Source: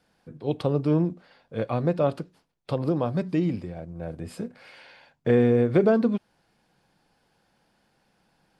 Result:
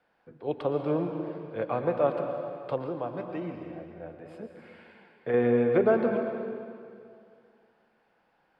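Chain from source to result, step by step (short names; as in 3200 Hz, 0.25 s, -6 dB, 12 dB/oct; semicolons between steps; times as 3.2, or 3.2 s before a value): three-band isolator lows -12 dB, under 370 Hz, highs -20 dB, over 2800 Hz; plate-style reverb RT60 2.3 s, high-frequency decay 0.95×, pre-delay 0.105 s, DRR 4.5 dB; 2.87–5.34 flange 1.9 Hz, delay 4.4 ms, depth 3.6 ms, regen +69%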